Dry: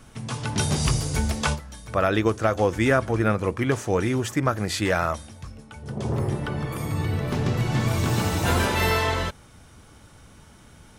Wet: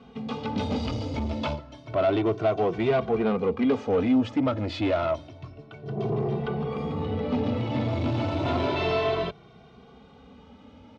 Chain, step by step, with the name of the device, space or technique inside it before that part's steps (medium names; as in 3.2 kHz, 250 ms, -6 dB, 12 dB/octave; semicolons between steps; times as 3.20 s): barber-pole flanger into a guitar amplifier (endless flanger 2.1 ms +0.3 Hz; saturation -25 dBFS, distortion -10 dB; cabinet simulation 82–3900 Hz, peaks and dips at 260 Hz +8 dB, 430 Hz +6 dB, 670 Hz +7 dB, 1.7 kHz -10 dB); trim +2 dB